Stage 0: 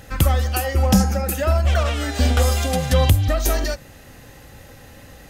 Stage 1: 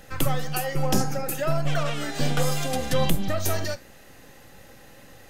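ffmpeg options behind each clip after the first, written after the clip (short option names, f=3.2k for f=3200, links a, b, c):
-filter_complex "[0:a]acrossover=split=220[a][b];[a]aeval=exprs='abs(val(0))':c=same[c];[c][b]amix=inputs=2:normalize=0,flanger=delay=5.4:depth=5.2:regen=-83:speed=1.2:shape=triangular"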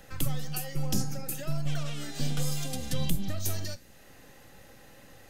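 -filter_complex "[0:a]acrossover=split=270|3000[a][b][c];[b]acompressor=threshold=-48dB:ratio=2[d];[a][d][c]amix=inputs=3:normalize=0,volume=-4dB"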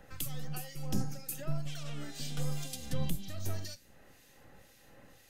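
-filter_complex "[0:a]acrossover=split=2200[a][b];[a]aeval=exprs='val(0)*(1-0.7/2+0.7/2*cos(2*PI*2*n/s))':c=same[c];[b]aeval=exprs='val(0)*(1-0.7/2-0.7/2*cos(2*PI*2*n/s))':c=same[d];[c][d]amix=inputs=2:normalize=0,volume=-2.5dB"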